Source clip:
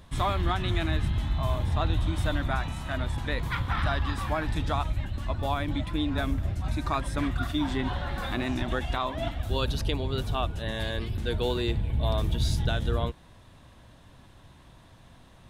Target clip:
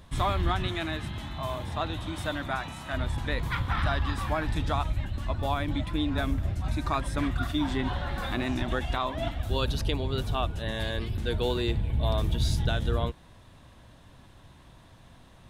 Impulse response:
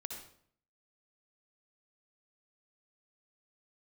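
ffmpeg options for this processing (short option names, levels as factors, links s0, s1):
-filter_complex "[0:a]asettb=1/sr,asplit=3[s0][s1][s2];[s0]atrim=end=0.674[s3];[s1]atrim=start=0.67:end=2.93,asetpts=PTS-STARTPTS,afade=t=in:d=0.004:c=qsin,afade=t=out:st=2.256:d=0.004:c=qsin,highpass=f=230:p=1[s4];[s2]atrim=start=2.926[s5];[s3][s4]acrossfade=d=0.004:c1=hsin:c2=qsin[s6];[s6][s5]acrossfade=d=0.004:c1=qsin:c2=hsin"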